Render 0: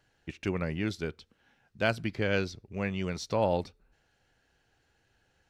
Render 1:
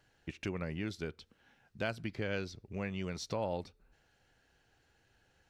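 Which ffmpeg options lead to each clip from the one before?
-af "acompressor=threshold=-39dB:ratio=2"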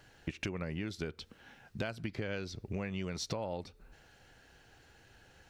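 -af "acompressor=threshold=-44dB:ratio=10,volume=10dB"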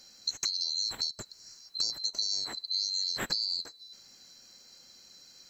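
-af "afftfilt=real='real(if(lt(b,736),b+184*(1-2*mod(floor(b/184),2)),b),0)':imag='imag(if(lt(b,736),b+184*(1-2*mod(floor(b/184),2)),b),0)':win_size=2048:overlap=0.75,volume=5.5dB"

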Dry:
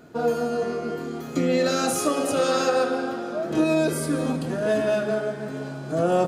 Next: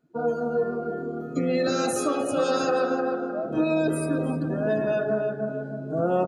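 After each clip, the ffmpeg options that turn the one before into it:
-filter_complex "[0:a]afftdn=nr=22:nf=-33,asplit=2[a][b];[b]adelay=307,lowpass=f=1.9k:p=1,volume=-5.5dB,asplit=2[c][d];[d]adelay=307,lowpass=f=1.9k:p=1,volume=0.32,asplit=2[e][f];[f]adelay=307,lowpass=f=1.9k:p=1,volume=0.32,asplit=2[g][h];[h]adelay=307,lowpass=f=1.9k:p=1,volume=0.32[i];[c][e][g][i]amix=inputs=4:normalize=0[j];[a][j]amix=inputs=2:normalize=0,volume=-2.5dB"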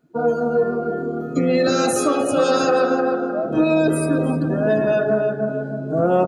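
-af "acontrast=71"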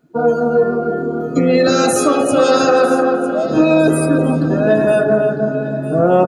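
-af "aecho=1:1:952|1904|2856:0.158|0.0539|0.0183,volume=5dB"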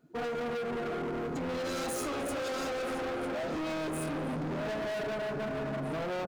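-af "acompressor=threshold=-15dB:ratio=6,asoftclip=type=hard:threshold=-25.5dB,volume=-7.5dB"

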